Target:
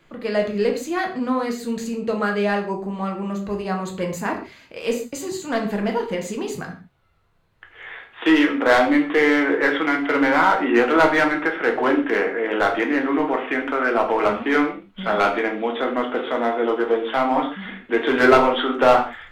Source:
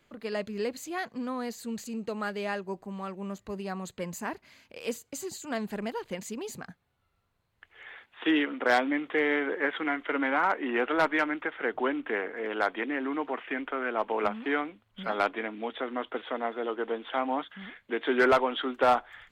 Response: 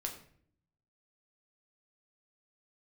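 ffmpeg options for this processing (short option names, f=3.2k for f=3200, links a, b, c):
-filter_complex "[0:a]highshelf=f=5.2k:g=-7.5,asplit=2[a][b];[b]aeval=exprs='0.0596*(abs(mod(val(0)/0.0596+3,4)-2)-1)':c=same,volume=-9dB[c];[a][c]amix=inputs=2:normalize=0[d];[1:a]atrim=start_sample=2205,afade=t=out:st=0.21:d=0.01,atrim=end_sample=9702[e];[d][e]afir=irnorm=-1:irlink=0,volume=8.5dB"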